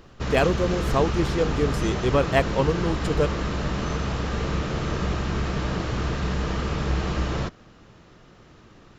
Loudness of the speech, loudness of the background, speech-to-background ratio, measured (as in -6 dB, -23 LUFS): -25.0 LUFS, -27.5 LUFS, 2.5 dB